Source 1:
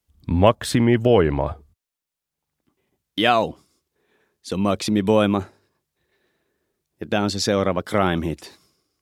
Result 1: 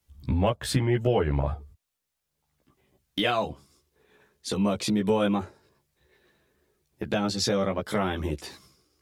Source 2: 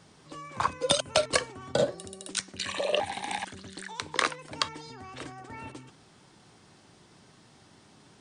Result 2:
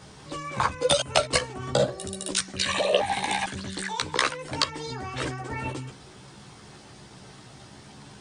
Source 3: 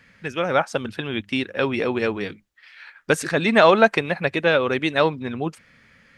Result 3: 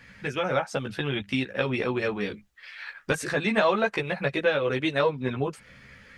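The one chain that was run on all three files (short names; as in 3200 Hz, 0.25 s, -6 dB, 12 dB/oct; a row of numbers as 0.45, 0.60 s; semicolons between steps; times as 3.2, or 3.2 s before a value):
compressor 2:1, threshold -33 dBFS; chorus voices 6, 0.79 Hz, delay 15 ms, depth 1.3 ms; match loudness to -27 LUFS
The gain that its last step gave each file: +6.5, +12.0, +6.5 dB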